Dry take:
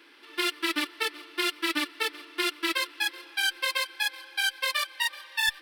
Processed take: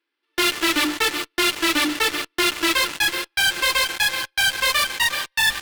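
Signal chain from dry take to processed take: hum notches 50/100/150/200/250/300 Hz; gate -43 dBFS, range -25 dB; in parallel at -8 dB: fuzz box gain 51 dB, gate -47 dBFS

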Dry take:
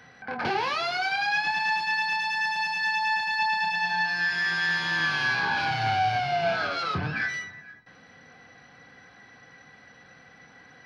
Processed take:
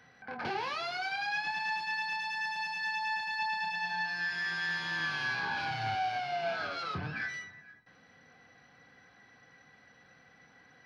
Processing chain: 5.95–6.59 s: high-pass 210 Hz 12 dB/octave; trim -8 dB

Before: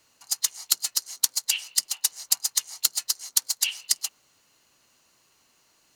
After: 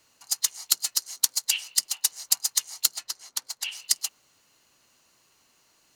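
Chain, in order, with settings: 2.94–3.71 s: treble shelf 5 kHz -> 3.3 kHz -11.5 dB

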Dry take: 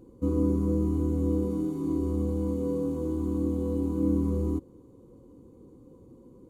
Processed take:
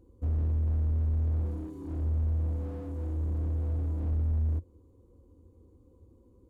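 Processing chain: resonant low shelf 110 Hz +8 dB, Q 3; slew-rate limiter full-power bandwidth 12 Hz; trim -9 dB

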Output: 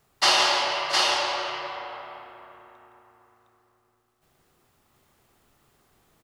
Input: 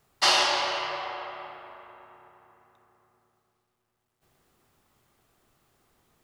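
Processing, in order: multi-tap echo 166/675/711 ms -8.5/-16/-3 dB; trim +1.5 dB

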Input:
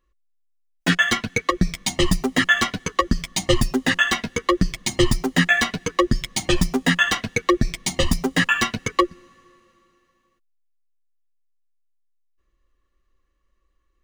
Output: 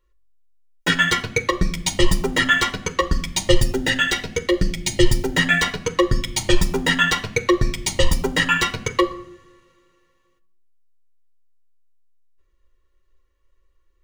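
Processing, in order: 3.52–5.34 s: peaking EQ 1.1 kHz -13 dB 0.36 oct; reverberation RT60 0.70 s, pre-delay 3 ms, DRR 11.5 dB; trim -1 dB

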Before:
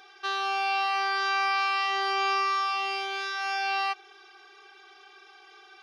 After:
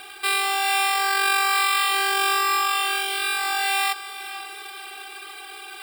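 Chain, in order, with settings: peaking EQ 4 kHz +12.5 dB 0.5 oct; in parallel at +1 dB: compression 12:1, threshold -43 dBFS, peak gain reduction 22 dB; on the sum: sample-and-hold 7×; high-pass 74 Hz 6 dB/octave; echo that smears into a reverb 453 ms, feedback 57%, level -14 dB; reverse; upward compressor, threshold -38 dBFS; reverse; bit crusher 10-bit; trim +2.5 dB

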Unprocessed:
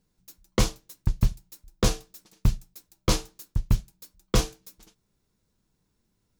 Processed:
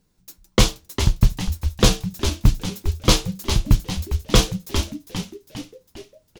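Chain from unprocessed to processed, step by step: dynamic bell 3.3 kHz, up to +6 dB, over -46 dBFS, Q 1.6; frequency-shifting echo 403 ms, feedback 50%, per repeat -110 Hz, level -7.5 dB; trim +6.5 dB

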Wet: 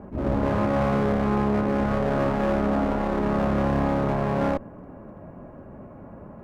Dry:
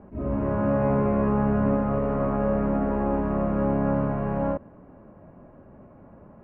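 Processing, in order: peak limiter -17 dBFS, peak gain reduction 5 dB; one-sided clip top -39.5 dBFS, bottom -20 dBFS; trim +6.5 dB

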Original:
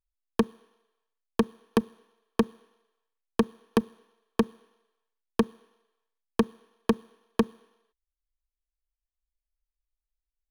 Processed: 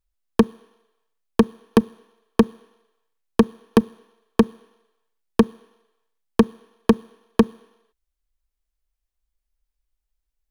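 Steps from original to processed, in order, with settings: bass shelf 490 Hz +4 dB; trim +5.5 dB

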